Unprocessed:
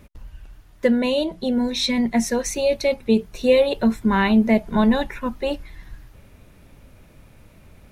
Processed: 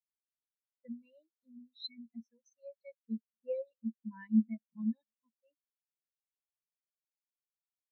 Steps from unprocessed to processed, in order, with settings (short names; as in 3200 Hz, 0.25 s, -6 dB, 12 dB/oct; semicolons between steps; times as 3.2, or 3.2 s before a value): HPF 67 Hz; passive tone stack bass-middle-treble 5-5-5; on a send: echo 0.223 s -18.5 dB; on the sum: spectral expander 4:1